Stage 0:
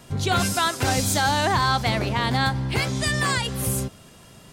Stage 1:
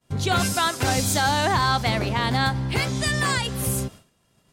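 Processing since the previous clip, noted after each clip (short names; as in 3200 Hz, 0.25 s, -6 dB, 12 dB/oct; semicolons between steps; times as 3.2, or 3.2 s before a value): expander -36 dBFS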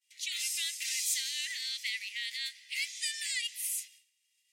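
rippled Chebyshev high-pass 1900 Hz, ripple 3 dB; gain -4.5 dB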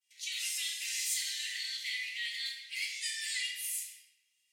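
shoebox room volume 480 m³, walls mixed, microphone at 2 m; gain -5.5 dB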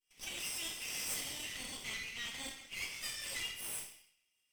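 minimum comb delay 0.36 ms; gain -3.5 dB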